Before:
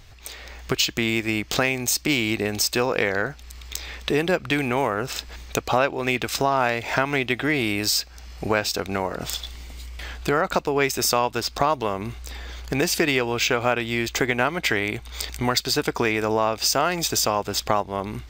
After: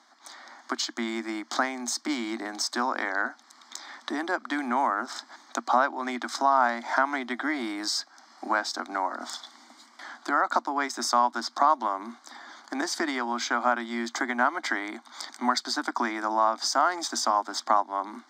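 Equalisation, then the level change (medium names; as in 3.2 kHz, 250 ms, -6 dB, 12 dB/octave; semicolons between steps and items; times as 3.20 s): rippled Chebyshev high-pass 230 Hz, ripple 3 dB; low-pass 5.5 kHz 12 dB/octave; static phaser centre 1.1 kHz, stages 4; +2.5 dB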